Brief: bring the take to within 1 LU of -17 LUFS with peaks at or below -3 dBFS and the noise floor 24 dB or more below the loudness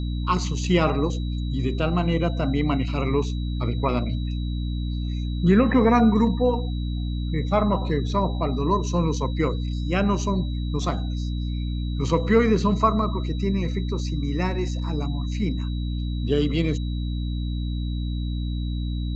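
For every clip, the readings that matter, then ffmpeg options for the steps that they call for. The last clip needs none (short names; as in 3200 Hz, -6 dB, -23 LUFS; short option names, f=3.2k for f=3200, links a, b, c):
hum 60 Hz; harmonics up to 300 Hz; hum level -24 dBFS; steady tone 3900 Hz; tone level -43 dBFS; loudness -24.5 LUFS; peak -6.0 dBFS; loudness target -17.0 LUFS
-> -af "bandreject=f=60:t=h:w=4,bandreject=f=120:t=h:w=4,bandreject=f=180:t=h:w=4,bandreject=f=240:t=h:w=4,bandreject=f=300:t=h:w=4"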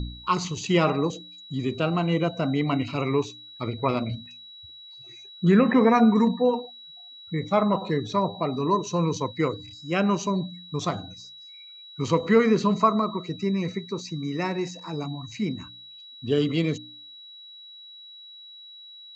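hum none; steady tone 3900 Hz; tone level -43 dBFS
-> -af "bandreject=f=3.9k:w=30"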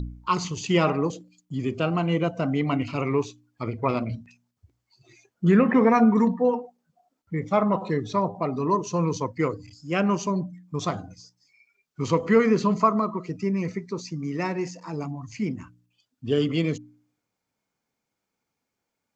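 steady tone none; loudness -25.0 LUFS; peak -7.5 dBFS; loudness target -17.0 LUFS
-> -af "volume=8dB,alimiter=limit=-3dB:level=0:latency=1"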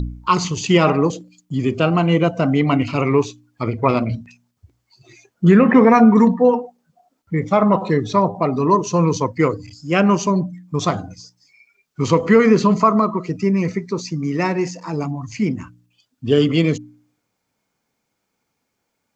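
loudness -17.5 LUFS; peak -3.0 dBFS; noise floor -75 dBFS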